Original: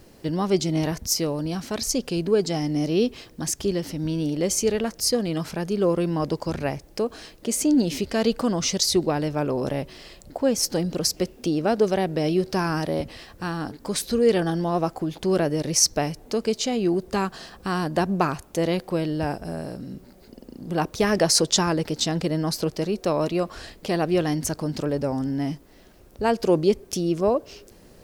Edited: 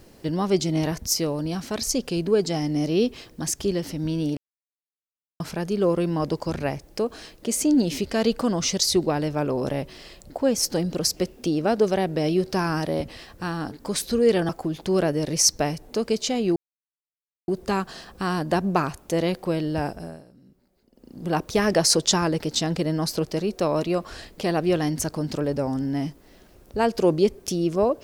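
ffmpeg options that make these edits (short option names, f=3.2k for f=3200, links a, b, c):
-filter_complex "[0:a]asplit=7[a][b][c][d][e][f][g];[a]atrim=end=4.37,asetpts=PTS-STARTPTS,afade=t=out:st=4.366:d=0.004:c=hsin[h];[b]atrim=start=4.37:end=5.4,asetpts=PTS-STARTPTS,volume=0[i];[c]atrim=start=5.4:end=14.492,asetpts=PTS-STARTPTS,afade=t=in:d=0.004:c=hsin[j];[d]atrim=start=14.858:end=16.93,asetpts=PTS-STARTPTS,afade=t=out:st=2.068:d=0.004:c=hsin,apad=pad_dur=0.92[k];[e]atrim=start=16.93:end=19.69,asetpts=PTS-STARTPTS,afade=t=in:d=0.004:c=hsin,afade=t=out:st=2.42:d=0.34:silence=0.133352[l];[f]atrim=start=19.69:end=20.37,asetpts=PTS-STARTPTS,volume=-17.5dB[m];[g]atrim=start=20.37,asetpts=PTS-STARTPTS,afade=t=in:d=0.34:silence=0.133352[n];[h][i][j]concat=n=3:v=0:a=1[o];[k][l][m][n]concat=n=4:v=0:a=1[p];[o][p]acrossfade=d=0.004:c1=hsin:c2=hsin"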